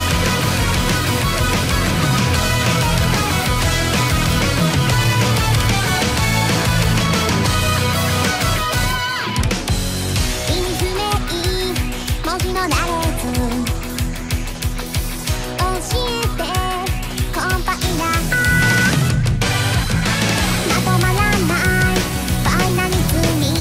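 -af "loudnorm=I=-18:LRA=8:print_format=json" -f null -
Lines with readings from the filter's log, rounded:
"input_i" : "-17.2",
"input_tp" : "-3.9",
"input_lra" : "4.6",
"input_thresh" : "-27.2",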